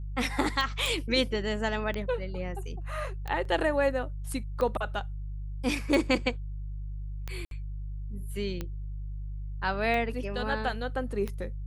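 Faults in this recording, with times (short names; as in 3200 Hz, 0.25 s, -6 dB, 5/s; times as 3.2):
hum 50 Hz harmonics 3 -36 dBFS
tick 45 rpm
0.86 pop
3.45 gap 3.1 ms
7.45–7.51 gap 62 ms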